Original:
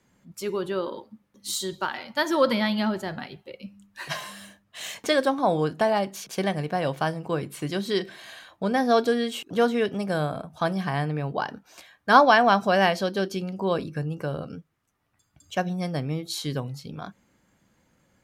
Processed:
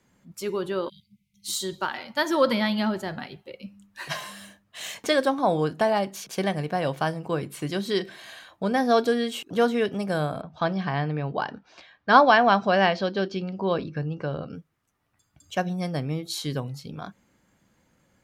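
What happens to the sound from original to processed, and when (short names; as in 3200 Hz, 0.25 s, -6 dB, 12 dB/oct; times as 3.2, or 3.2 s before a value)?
0.89–1.48 spectral delete 210–2000 Hz
10.41–14.55 LPF 5000 Hz 24 dB/oct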